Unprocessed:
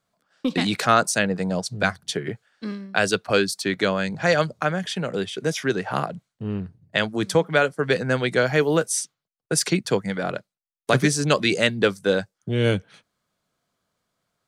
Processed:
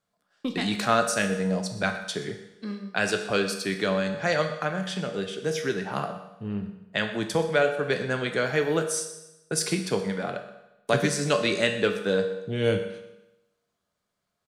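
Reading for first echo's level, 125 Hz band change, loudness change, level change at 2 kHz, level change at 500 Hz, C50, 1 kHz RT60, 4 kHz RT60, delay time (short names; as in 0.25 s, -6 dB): -16.5 dB, -5.5 dB, -4.0 dB, -4.0 dB, -3.0 dB, 7.5 dB, 0.90 s, 0.90 s, 0.125 s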